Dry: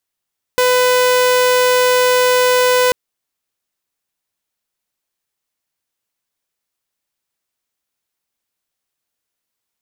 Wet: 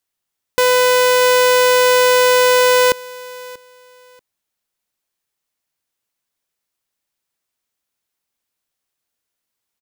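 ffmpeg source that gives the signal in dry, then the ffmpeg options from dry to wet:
-f lavfi -i "aevalsrc='0.398*(2*mod(500*t,1)-1)':duration=2.34:sample_rate=44100"
-af "aecho=1:1:636|1272:0.0794|0.0222"

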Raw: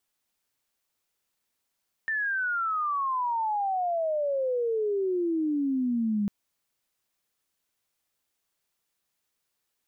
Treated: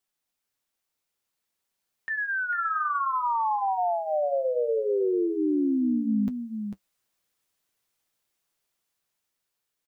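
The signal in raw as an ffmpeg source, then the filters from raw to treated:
-f lavfi -i "aevalsrc='pow(10,(-25.5+2*t/4.2)/20)*sin(2*PI*1800*4.2/log(200/1800)*(exp(log(200/1800)*t/4.2)-1))':duration=4.2:sample_rate=44100"
-filter_complex "[0:a]dynaudnorm=framelen=580:gausssize=7:maxgain=5dB,flanger=delay=5.2:depth=6.7:regen=-46:speed=0.6:shape=sinusoidal,asplit=2[link_01][link_02];[link_02]aecho=0:1:447:0.422[link_03];[link_01][link_03]amix=inputs=2:normalize=0"

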